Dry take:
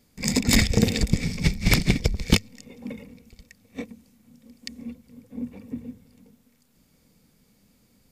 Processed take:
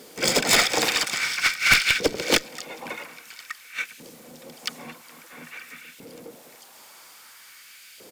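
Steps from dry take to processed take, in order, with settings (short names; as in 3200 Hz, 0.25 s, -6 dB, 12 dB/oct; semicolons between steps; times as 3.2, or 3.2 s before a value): LFO high-pass saw up 0.5 Hz 410–2700 Hz; harmoniser -7 st -6 dB, +3 st -15 dB; one-sided clip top -18.5 dBFS; power-law curve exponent 0.7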